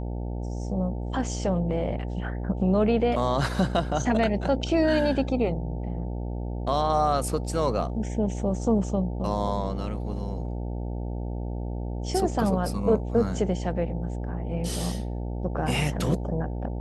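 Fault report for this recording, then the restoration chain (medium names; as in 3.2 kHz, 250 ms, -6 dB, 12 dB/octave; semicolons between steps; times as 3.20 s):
buzz 60 Hz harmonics 15 -31 dBFS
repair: de-hum 60 Hz, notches 15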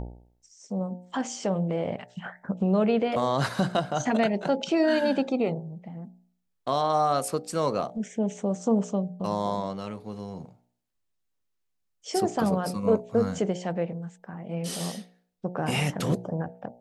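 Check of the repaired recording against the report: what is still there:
nothing left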